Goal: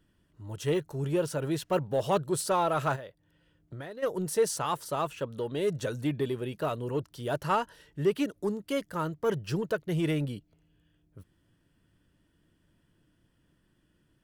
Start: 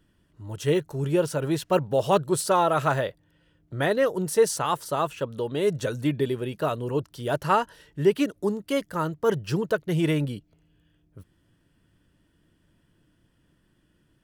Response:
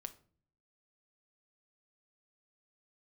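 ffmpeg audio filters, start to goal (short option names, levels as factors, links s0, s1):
-filter_complex "[0:a]asplit=2[s0][s1];[s1]asoftclip=type=tanh:threshold=0.0708,volume=0.562[s2];[s0][s2]amix=inputs=2:normalize=0,asplit=3[s3][s4][s5];[s3]afade=t=out:st=2.95:d=0.02[s6];[s4]acompressor=threshold=0.0251:ratio=8,afade=t=in:st=2.95:d=0.02,afade=t=out:st=4.02:d=0.02[s7];[s5]afade=t=in:st=4.02:d=0.02[s8];[s6][s7][s8]amix=inputs=3:normalize=0,volume=0.422"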